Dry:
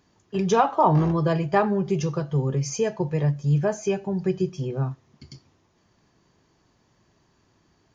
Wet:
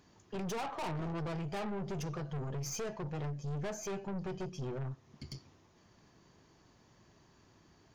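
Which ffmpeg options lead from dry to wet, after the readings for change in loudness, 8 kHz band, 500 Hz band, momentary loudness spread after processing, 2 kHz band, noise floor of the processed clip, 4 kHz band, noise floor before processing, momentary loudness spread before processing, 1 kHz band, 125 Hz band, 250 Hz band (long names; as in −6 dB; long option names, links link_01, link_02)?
−16.0 dB, can't be measured, −16.5 dB, 7 LU, −12.5 dB, −66 dBFS, −8.5 dB, −65 dBFS, 9 LU, −18.0 dB, −15.0 dB, −15.5 dB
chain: -af "acompressor=threshold=-39dB:ratio=1.5,aeval=exprs='(tanh(70.8*val(0)+0.35)-tanh(0.35))/70.8':channel_layout=same,volume=1dB"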